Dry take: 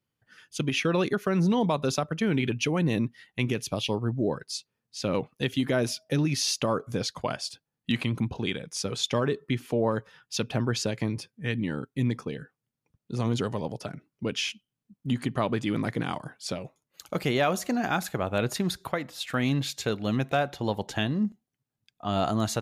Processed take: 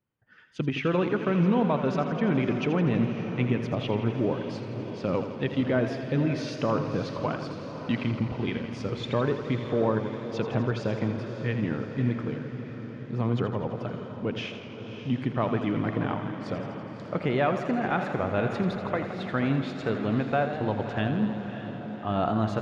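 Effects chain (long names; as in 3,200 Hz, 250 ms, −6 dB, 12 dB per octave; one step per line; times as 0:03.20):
low-pass filter 2,100 Hz 12 dB per octave
feedback delay with all-pass diffusion 592 ms, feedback 60%, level −10 dB
feedback echo with a swinging delay time 83 ms, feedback 75%, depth 81 cents, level −10.5 dB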